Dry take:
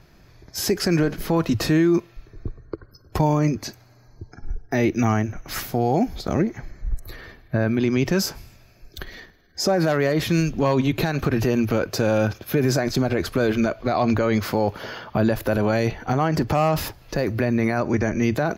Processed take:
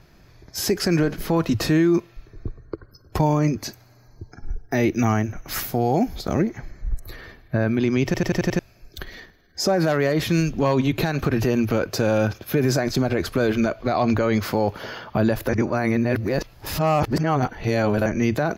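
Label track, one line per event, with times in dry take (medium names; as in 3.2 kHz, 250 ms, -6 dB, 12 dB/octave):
3.570000	6.490000	treble shelf 11 kHz +7 dB
8.050000	8.050000	stutter in place 0.09 s, 6 plays
15.490000	18.060000	reverse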